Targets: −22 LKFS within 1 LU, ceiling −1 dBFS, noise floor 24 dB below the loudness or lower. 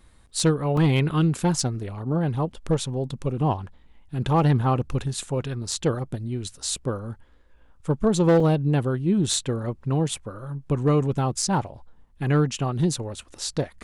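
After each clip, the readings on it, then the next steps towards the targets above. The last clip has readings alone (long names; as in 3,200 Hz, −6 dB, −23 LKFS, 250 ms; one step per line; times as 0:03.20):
share of clipped samples 0.3%; peaks flattened at −12.5 dBFS; number of dropouts 2; longest dropout 3.5 ms; integrated loudness −24.5 LKFS; sample peak −12.5 dBFS; target loudness −22.0 LKFS
→ clipped peaks rebuilt −12.5 dBFS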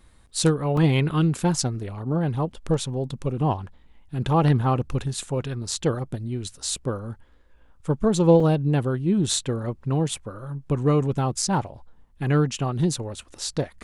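share of clipped samples 0.0%; number of dropouts 2; longest dropout 3.5 ms
→ repair the gap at 0:00.77/0:08.40, 3.5 ms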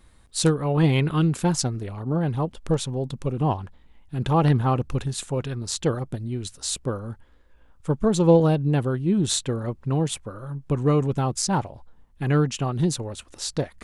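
number of dropouts 0; integrated loudness −24.0 LKFS; sample peak −6.0 dBFS; target loudness −22.0 LKFS
→ level +2 dB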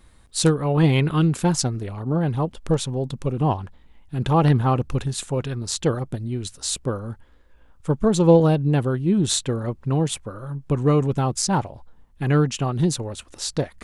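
integrated loudness −22.0 LKFS; sample peak −4.0 dBFS; background noise floor −52 dBFS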